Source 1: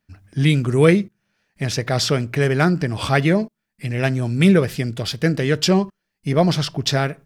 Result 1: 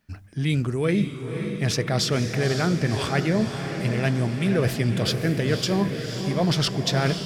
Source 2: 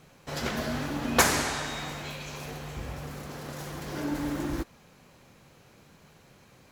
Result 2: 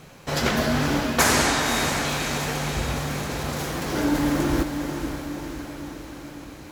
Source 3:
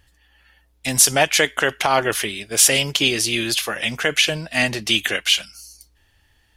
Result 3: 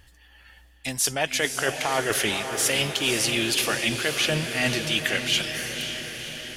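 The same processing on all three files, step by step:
reverse; compressor 10:1, threshold -25 dBFS; reverse; diffused feedback echo 0.53 s, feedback 61%, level -7 dB; match loudness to -24 LUFS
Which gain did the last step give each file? +5.0, +9.5, +3.5 dB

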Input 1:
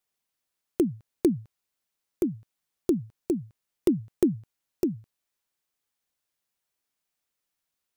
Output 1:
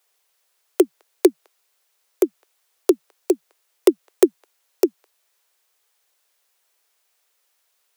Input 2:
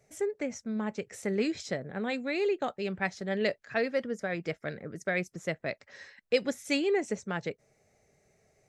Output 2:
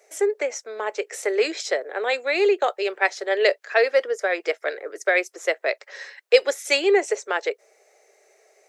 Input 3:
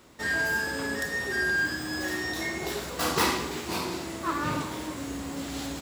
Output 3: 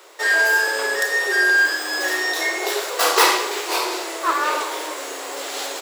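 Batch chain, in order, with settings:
steep high-pass 380 Hz 48 dB/oct; normalise peaks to -2 dBFS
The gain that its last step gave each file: +14.5, +11.0, +10.5 dB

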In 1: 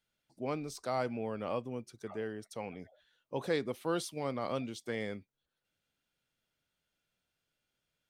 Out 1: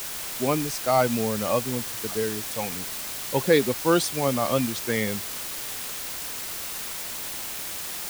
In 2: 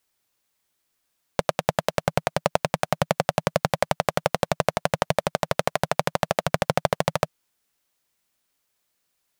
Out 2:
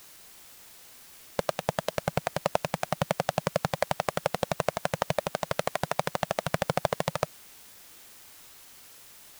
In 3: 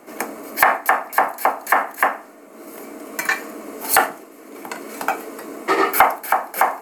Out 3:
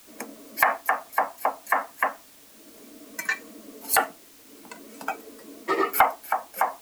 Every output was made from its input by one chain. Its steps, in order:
per-bin expansion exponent 1.5; requantised 8-bit, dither triangular; normalise peaks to -6 dBFS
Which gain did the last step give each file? +14.5, -3.0, -4.0 dB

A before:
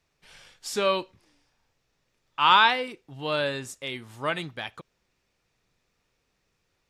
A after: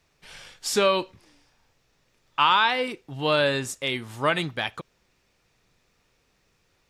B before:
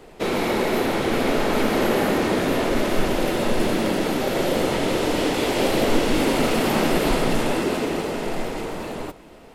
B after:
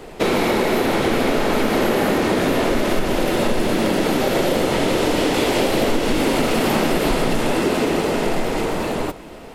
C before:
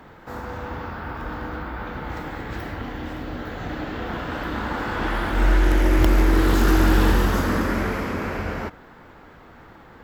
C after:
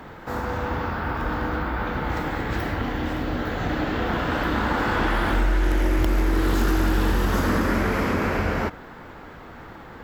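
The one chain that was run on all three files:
compressor 5:1, threshold -23 dBFS; normalise peaks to -6 dBFS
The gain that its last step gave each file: +6.5, +8.0, +5.0 dB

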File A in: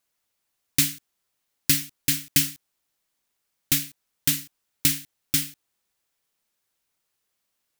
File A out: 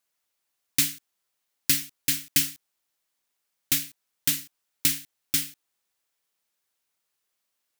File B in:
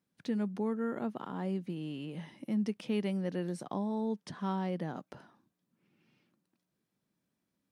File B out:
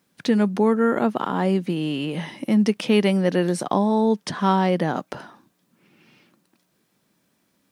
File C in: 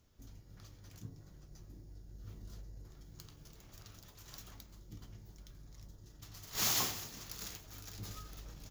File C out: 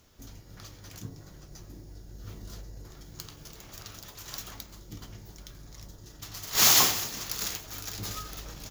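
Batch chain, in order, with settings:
low shelf 270 Hz -7.5 dB; normalise peaks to -6 dBFS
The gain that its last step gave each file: -1.5, +18.0, +13.0 dB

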